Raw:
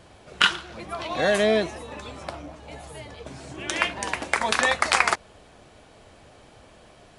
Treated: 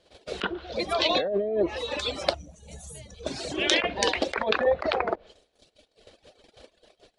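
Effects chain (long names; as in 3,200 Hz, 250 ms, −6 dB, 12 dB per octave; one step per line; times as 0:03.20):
treble cut that deepens with the level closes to 690 Hz, closed at −17.5 dBFS
noise gate −48 dBFS, range −23 dB
reverb reduction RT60 1.2 s
compressor whose output falls as the input rises −31 dBFS, ratio −1
graphic EQ with 10 bands 125 Hz −8 dB, 500 Hz +9 dB, 1,000 Hz −5 dB, 4,000 Hz +11 dB
gain on a spectral selection 0:02.34–0:03.23, 230–5,600 Hz −18 dB
level +3 dB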